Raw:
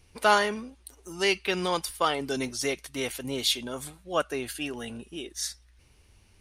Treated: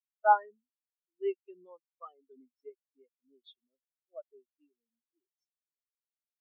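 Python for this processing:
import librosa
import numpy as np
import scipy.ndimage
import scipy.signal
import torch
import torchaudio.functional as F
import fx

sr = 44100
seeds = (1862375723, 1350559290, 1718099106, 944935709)

y = fx.highpass(x, sr, hz=160.0, slope=6)
y = fx.spectral_expand(y, sr, expansion=4.0)
y = y * librosa.db_to_amplitude(-2.5)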